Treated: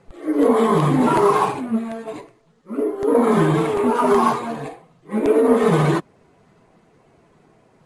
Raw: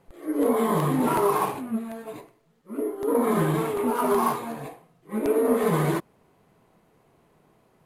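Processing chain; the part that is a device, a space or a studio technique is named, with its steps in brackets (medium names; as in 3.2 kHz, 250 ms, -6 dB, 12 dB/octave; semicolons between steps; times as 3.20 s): clip after many re-uploads (low-pass 8.7 kHz 24 dB/octave; coarse spectral quantiser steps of 15 dB); trim +7 dB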